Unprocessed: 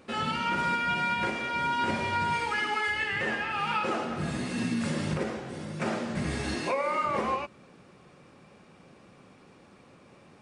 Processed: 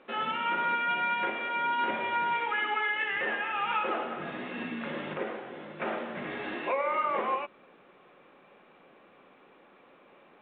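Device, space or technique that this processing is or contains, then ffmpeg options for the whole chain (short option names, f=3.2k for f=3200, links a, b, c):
telephone: -af "highpass=360,lowpass=3.3k" -ar 8000 -c:a pcm_alaw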